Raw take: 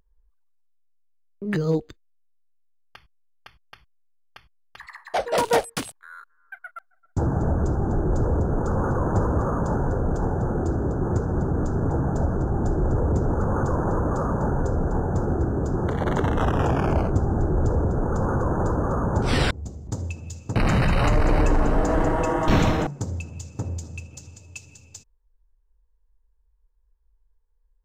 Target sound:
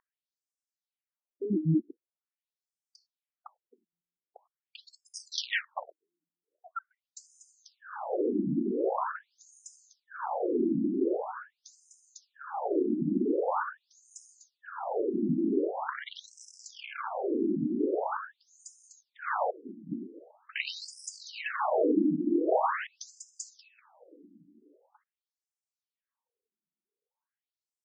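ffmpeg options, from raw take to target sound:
ffmpeg -i in.wav -af "afftfilt=real='re*between(b*sr/1024,240*pow(7100/240,0.5+0.5*sin(2*PI*0.44*pts/sr))/1.41,240*pow(7100/240,0.5+0.5*sin(2*PI*0.44*pts/sr))*1.41)':imag='im*between(b*sr/1024,240*pow(7100/240,0.5+0.5*sin(2*PI*0.44*pts/sr))/1.41,240*pow(7100/240,0.5+0.5*sin(2*PI*0.44*pts/sr))*1.41)':win_size=1024:overlap=0.75,volume=2.5dB" out.wav

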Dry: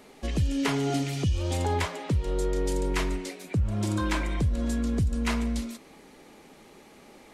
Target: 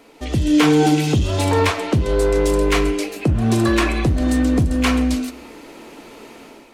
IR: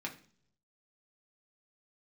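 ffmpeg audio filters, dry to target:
-filter_complex "[0:a]dynaudnorm=framelen=150:gausssize=5:maxgain=9dB,asoftclip=type=hard:threshold=-13dB,asplit=2[link_01][link_02];[1:a]atrim=start_sample=2205,asetrate=48510,aresample=44100,lowpass=8800[link_03];[link_02][link_03]afir=irnorm=-1:irlink=0,volume=-4.5dB[link_04];[link_01][link_04]amix=inputs=2:normalize=0,asetrate=48000,aresample=44100"

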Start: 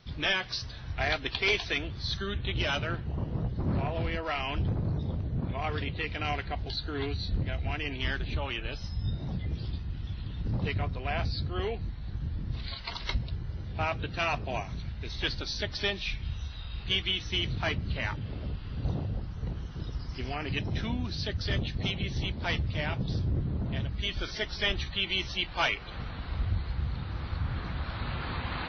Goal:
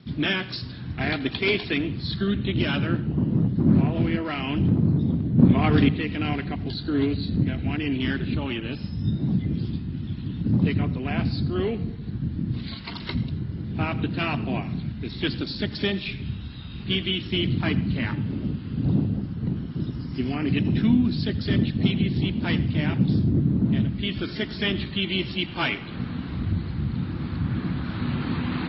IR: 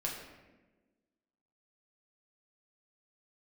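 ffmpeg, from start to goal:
-filter_complex "[0:a]lowshelf=frequency=390:width_type=q:width=1.5:gain=12.5,asplit=3[link_01][link_02][link_03];[link_01]afade=type=out:start_time=5.38:duration=0.02[link_04];[link_02]acontrast=88,afade=type=in:start_time=5.38:duration=0.02,afade=type=out:start_time=5.88:duration=0.02[link_05];[link_03]afade=type=in:start_time=5.88:duration=0.02[link_06];[link_04][link_05][link_06]amix=inputs=3:normalize=0,highpass=170,lowpass=5200,asplit=2[link_07][link_08];[1:a]atrim=start_sample=2205,asetrate=74970,aresample=44100,adelay=82[link_09];[link_08][link_09]afir=irnorm=-1:irlink=0,volume=-13.5dB[link_10];[link_07][link_10]amix=inputs=2:normalize=0,volume=2dB" -ar 22050 -c:a mp2 -b:a 32k

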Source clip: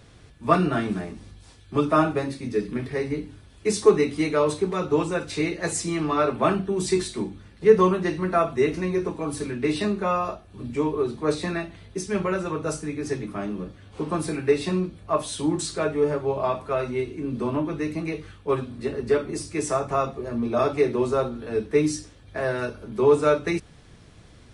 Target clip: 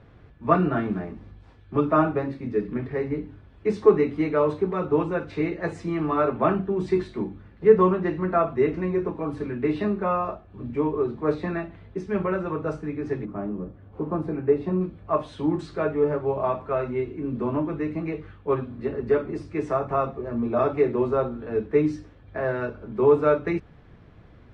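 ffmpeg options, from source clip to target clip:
ffmpeg -i in.wav -af "asetnsamples=nb_out_samples=441:pad=0,asendcmd='13.25 lowpass f 1000;14.81 lowpass f 1900',lowpass=1800" out.wav

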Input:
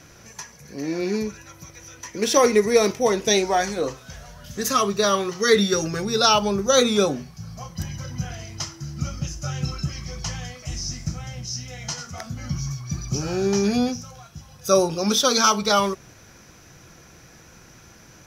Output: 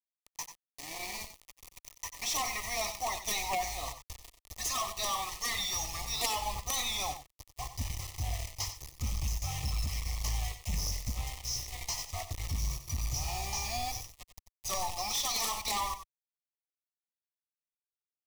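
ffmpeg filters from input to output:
ffmpeg -i in.wav -filter_complex "[0:a]asoftclip=type=tanh:threshold=-12.5dB,firequalizer=gain_entry='entry(100,0);entry(180,-17);entry(310,-14);entry(450,-26);entry(710,10);entry(1500,2);entry(2200,7);entry(3100,4);entry(7700,8);entry(14000,0)':delay=0.05:min_phase=1,acompressor=threshold=-15dB:ratio=6,acrusher=bits=4:mix=0:aa=0.000001,asubboost=boost=9.5:cutoff=66,aeval=exprs='0.668*(cos(1*acos(clip(val(0)/0.668,-1,1)))-cos(1*PI/2))+0.299*(cos(3*acos(clip(val(0)/0.668,-1,1)))-cos(3*PI/2))':channel_layout=same,asuperstop=centerf=1500:order=8:qfactor=2.8,asplit=2[link_01][link_02];[link_02]aecho=0:1:87|93:0.106|0.282[link_03];[link_01][link_03]amix=inputs=2:normalize=0" out.wav

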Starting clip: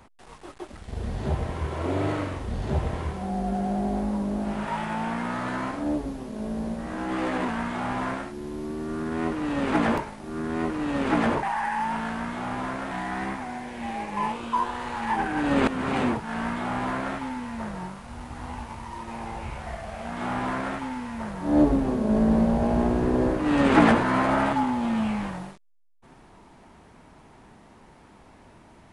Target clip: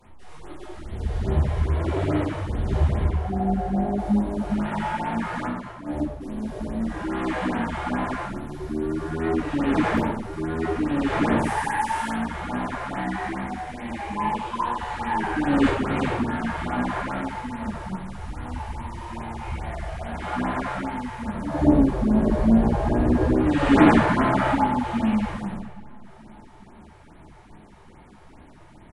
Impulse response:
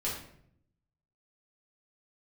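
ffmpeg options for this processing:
-filter_complex "[0:a]asettb=1/sr,asplit=3[link_01][link_02][link_03];[link_01]atrim=end=3.034[link_04];[link_02]atrim=start=3.03:end=3.98,asetpts=PTS-STARTPTS,afade=type=in:duration=0.004:curve=qsin,afade=type=out:start_time=0.946:duration=0.004:curve=qsin,acrossover=split=2800[link_05][link_06];[link_06]acompressor=threshold=-59dB:ratio=4:attack=1:release=60[link_07];[link_05][link_07]amix=inputs=2:normalize=0[link_08];[link_03]atrim=start=3.976[link_09];[link_04][link_08]acrossfade=duration=0.004:curve1=hsin:curve2=qsin[link_10];[link_10][link_09]acrossfade=duration=0.004:curve1=qsin:curve2=hsin,asettb=1/sr,asplit=3[link_11][link_12][link_13];[link_11]atrim=end=5.464[link_14];[link_12]atrim=start=5.46:end=6.21,asetpts=PTS-STARTPTS,afade=type=in:duration=0.004:curve=qsin,afade=type=out:start_time=0.746:duration=0.004:curve=qsin,agate=range=-13dB:threshold=-27dB:ratio=16:detection=peak[link_15];[link_13]atrim=start=6.206[link_16];[link_14][link_15]acrossfade=duration=0.004:curve1=hsin:curve2=qsin[link_17];[link_17][link_16]acrossfade=duration=0.004:curve1=qsin:curve2=hsin,asettb=1/sr,asplit=3[link_18][link_19][link_20];[link_18]atrim=end=11.384[link_21];[link_19]atrim=start=11.38:end=12.1,asetpts=PTS-STARTPTS,afade=type=in:duration=0.004:curve=qsin,afade=type=out:start_time=0.716:duration=0.004:curve=qsin,aemphasis=mode=production:type=75fm[link_22];[link_20]atrim=start=12.096[link_23];[link_21][link_22]acrossfade=duration=0.004:curve1=hsin:curve2=qsin[link_24];[link_24][link_23]acrossfade=duration=0.004:curve1=qsin:curve2=hsin,aecho=1:1:579|1158|1737:0.075|0.0367|0.018[link_25];[1:a]atrim=start_sample=2205,asetrate=31311,aresample=44100[link_26];[link_25][link_26]afir=irnorm=-1:irlink=0,afftfilt=real='re*(1-between(b*sr/1024,210*pow(6500/210,0.5+0.5*sin(2*PI*2.4*pts/sr))/1.41,210*pow(6500/210,0.5+0.5*sin(2*PI*2.4*pts/sr))*1.41))':imag='im*(1-between(b*sr/1024,210*pow(6500/210,0.5+0.5*sin(2*PI*2.4*pts/sr))/1.41,210*pow(6500/210,0.5+0.5*sin(2*PI*2.4*pts/sr))*1.41))':win_size=1024:overlap=0.75,volume=-5.5dB"

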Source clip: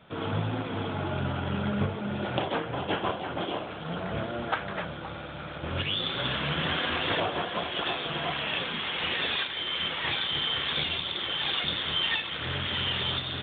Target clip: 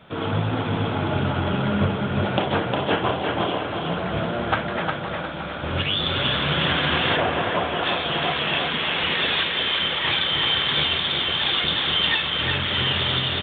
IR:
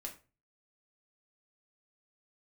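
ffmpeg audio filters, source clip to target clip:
-filter_complex "[0:a]aecho=1:1:357|714|1071|1428|1785:0.631|0.246|0.096|0.0374|0.0146,asettb=1/sr,asplit=3[link_01][link_02][link_03];[link_01]atrim=end=7.164[link_04];[link_02]atrim=start=7.16:end=7.83,asetpts=PTS-STARTPTS,afade=type=in:duration=0.004:curve=qsin,afade=type=out:start_time=0.666:duration=0.004:curve=qsin,acrossover=split=2800[link_05][link_06];[link_06]acompressor=threshold=-48dB:ratio=4:attack=1:release=60[link_07];[link_05][link_07]amix=inputs=2:normalize=0[link_08];[link_03]atrim=start=7.826[link_09];[link_04][link_08]acrossfade=duration=0.004:curve1=hsin:curve2=qsin[link_10];[link_10][link_09]acrossfade=duration=0.004:curve1=qsin:curve2=hsin,volume=6dB"

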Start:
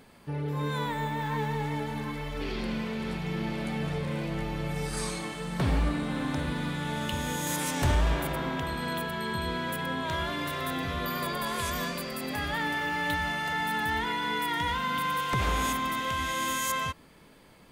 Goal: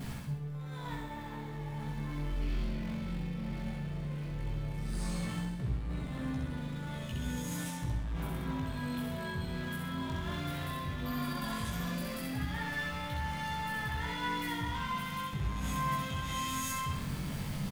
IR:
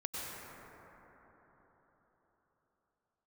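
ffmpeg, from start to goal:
-af "aeval=exprs='val(0)+0.5*0.01*sgn(val(0))':channel_layout=same,lowshelf=frequency=240:width_type=q:width=1.5:gain=11.5,areverse,acompressor=threshold=-31dB:ratio=5,areverse,asoftclip=type=tanh:threshold=-29dB,aecho=1:1:65|130|195|260|325|390:0.708|0.319|0.143|0.0645|0.029|0.0131,flanger=delay=15:depth=7:speed=0.15,volume=2dB"

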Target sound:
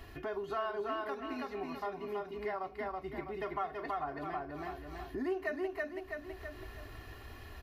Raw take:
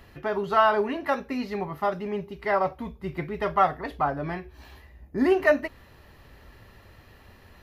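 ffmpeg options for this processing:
ffmpeg -i in.wav -af "aecho=1:1:327|654|981|1308:0.708|0.205|0.0595|0.0173,acompressor=threshold=-41dB:ratio=3,aecho=1:1:2.8:0.6,volume=-1dB" out.wav

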